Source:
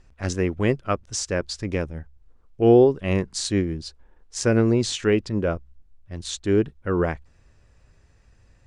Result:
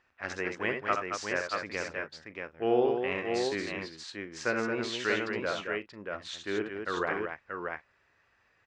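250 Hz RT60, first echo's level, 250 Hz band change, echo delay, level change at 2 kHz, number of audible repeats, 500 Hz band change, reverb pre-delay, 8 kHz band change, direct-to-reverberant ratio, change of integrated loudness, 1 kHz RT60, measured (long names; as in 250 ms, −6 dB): no reverb audible, −7.0 dB, −12.5 dB, 66 ms, +1.5 dB, 4, −9.0 dB, no reverb audible, −14.0 dB, no reverb audible, −9.5 dB, no reverb audible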